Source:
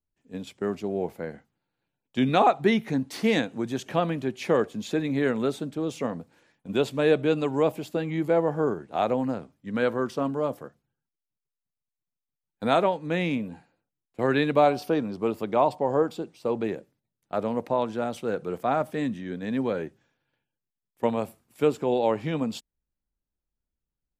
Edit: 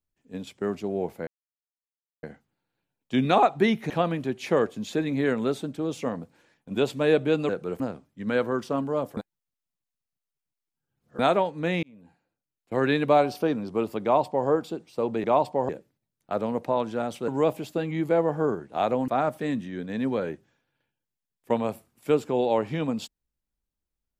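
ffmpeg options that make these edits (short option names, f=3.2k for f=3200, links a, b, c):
-filter_complex "[0:a]asplit=12[a][b][c][d][e][f][g][h][i][j][k][l];[a]atrim=end=1.27,asetpts=PTS-STARTPTS,afade=t=out:st=1.266:d=0.004:c=hsin,apad=pad_dur=0.96[m];[b]atrim=start=1.27:end=2.942,asetpts=PTS-STARTPTS,afade=t=in:d=0.004:c=hsin[n];[c]atrim=start=3.878:end=7.472[o];[d]atrim=start=18.298:end=18.612[p];[e]atrim=start=9.268:end=10.642[q];[f]atrim=start=10.638:end=12.662,asetpts=PTS-STARTPTS,areverse[r];[g]atrim=start=12.658:end=13.3,asetpts=PTS-STARTPTS,afade=t=out:st=0.638:d=0.004:c=hsin[s];[h]atrim=start=13.3:end=16.712,asetpts=PTS-STARTPTS,afade=t=in:d=1.03[t];[i]atrim=start=15.498:end=15.952[u];[j]atrim=start=16.708:end=18.302[v];[k]atrim=start=7.468:end=9.272[w];[l]atrim=start=18.608[x];[m][n]concat=n=2:v=0:a=1[y];[y][o]acrossfade=d=0.004:c1=hsin:c2=hsin[z];[z][p]acrossfade=d=0.004:c1=hsin:c2=hsin[aa];[aa][q]acrossfade=d=0.004:c1=hsin:c2=hsin[ab];[ab][r]acrossfade=d=0.004:c1=hsin:c2=hsin[ac];[s][t]concat=n=2:v=0:a=1[ad];[ac][ad]acrossfade=d=0.004:c1=hsin:c2=hsin[ae];[ae][u]acrossfade=d=0.004:c1=hsin:c2=hsin[af];[af][v]acrossfade=d=0.004:c1=hsin:c2=hsin[ag];[ag][w]acrossfade=d=0.004:c1=hsin:c2=hsin[ah];[ah][x]acrossfade=d=0.004:c1=hsin:c2=hsin"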